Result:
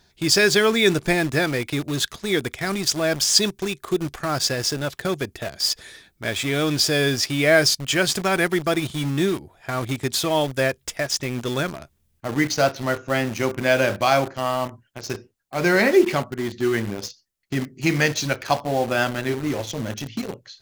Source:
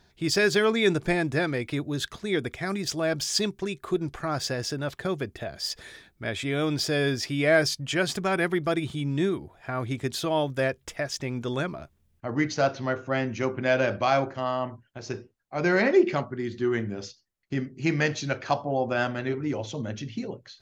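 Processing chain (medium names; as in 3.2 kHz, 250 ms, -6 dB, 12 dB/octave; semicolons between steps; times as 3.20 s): treble shelf 3.4 kHz +8 dB; in parallel at -5 dB: bit crusher 5-bit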